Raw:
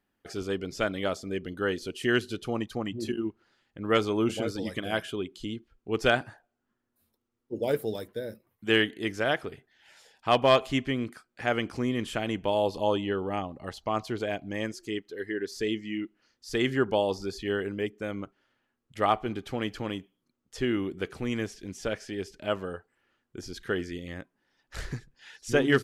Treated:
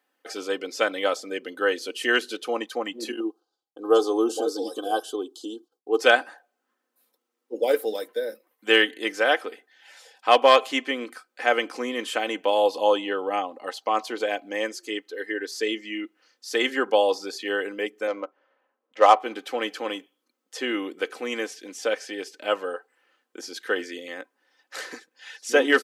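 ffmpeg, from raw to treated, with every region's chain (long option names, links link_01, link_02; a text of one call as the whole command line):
ffmpeg -i in.wav -filter_complex "[0:a]asettb=1/sr,asplit=3[link_01][link_02][link_03];[link_01]atrim=end=3.204[link_04];[link_02]atrim=start=3.2:end=6,asetpts=PTS-STARTPTS,afade=type=in:duration=0.004:curve=qsin,afade=type=out:start_time=2.796:duration=0.004:curve=qsin,agate=range=-33dB:threshold=-59dB:ratio=3:release=100:detection=peak,asuperstop=centerf=2100:order=4:qfactor=0.74,aecho=1:1:2.6:0.59,atrim=end_sample=123480[link_05];[link_03]atrim=start=5.996[link_06];[link_04][link_05]acrossfade=duration=0.004:curve1=hsin:curve2=qsin[link_07];[link_07][link_06]acrossfade=duration=0.004:curve1=qsin:curve2=hsin,asettb=1/sr,asplit=3[link_08][link_09][link_10];[link_08]atrim=end=18.074[link_11];[link_09]atrim=start=18.07:end=19.2,asetpts=PTS-STARTPTS,afade=type=in:duration=0.004:curve=qsin,afade=type=out:start_time=1.126:duration=0.004:curve=qsin,adynamicsmooth=sensitivity=5:basefreq=2200,highpass=220,equalizer=frequency=580:width_type=q:width=4:gain=8,equalizer=frequency=1000:width_type=q:width=4:gain=5,equalizer=frequency=6200:width_type=q:width=4:gain=6,lowpass=frequency=9700:width=0.5412,lowpass=frequency=9700:width=1.3066[link_12];[link_10]atrim=start=19.196[link_13];[link_11][link_12]acrossfade=duration=0.004:curve1=hsin:curve2=qsin[link_14];[link_14][link_13]acrossfade=duration=0.004:curve1=qsin:curve2=hsin,highpass=frequency=360:width=0.5412,highpass=frequency=360:width=1.3066,aecho=1:1:3.9:0.54,volume=5.5dB" out.wav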